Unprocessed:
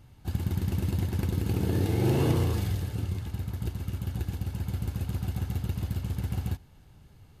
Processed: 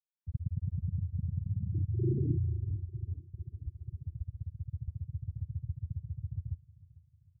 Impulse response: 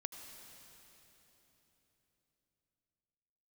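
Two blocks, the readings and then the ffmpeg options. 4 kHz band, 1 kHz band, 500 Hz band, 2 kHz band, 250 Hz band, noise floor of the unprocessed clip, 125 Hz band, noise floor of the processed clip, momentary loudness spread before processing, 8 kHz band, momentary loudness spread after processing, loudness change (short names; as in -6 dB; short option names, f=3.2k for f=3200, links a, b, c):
under -40 dB, under -40 dB, -12.5 dB, under -40 dB, -10.5 dB, -55 dBFS, -5.5 dB, -68 dBFS, 9 LU, under -35 dB, 12 LU, -6.5 dB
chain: -af "afftfilt=real='re*gte(hypot(re,im),0.316)':imag='im*gte(hypot(re,im),0.316)':win_size=1024:overlap=0.75,aecho=1:1:448|896|1344|1792:0.1|0.048|0.023|0.0111,volume=-3.5dB"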